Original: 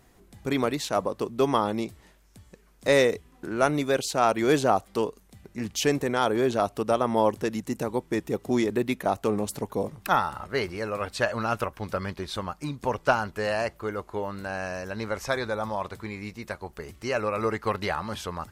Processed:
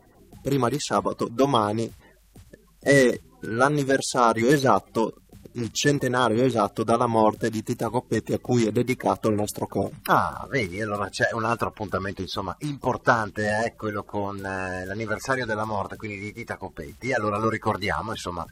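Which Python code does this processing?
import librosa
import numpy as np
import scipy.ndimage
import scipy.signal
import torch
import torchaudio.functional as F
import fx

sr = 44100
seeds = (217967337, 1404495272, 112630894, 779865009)

y = fx.spec_quant(x, sr, step_db=30)
y = y * 10.0 ** (3.5 / 20.0)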